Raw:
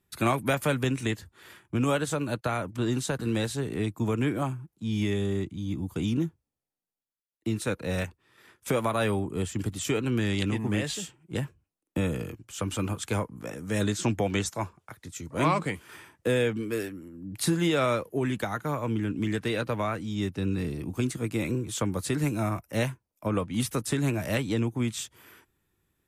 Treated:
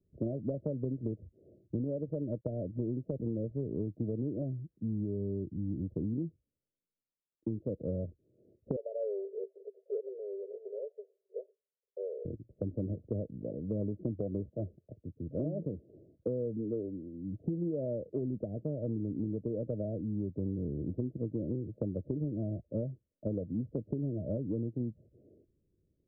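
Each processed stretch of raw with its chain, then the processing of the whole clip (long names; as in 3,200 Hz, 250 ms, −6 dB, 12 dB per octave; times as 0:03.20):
0:08.76–0:12.25: Chebyshev high-pass filter 390 Hz, order 10 + parametric band 1,100 Hz −14 dB 0.91 octaves
whole clip: Butterworth low-pass 630 Hz 96 dB per octave; downward compressor, threshold −31 dBFS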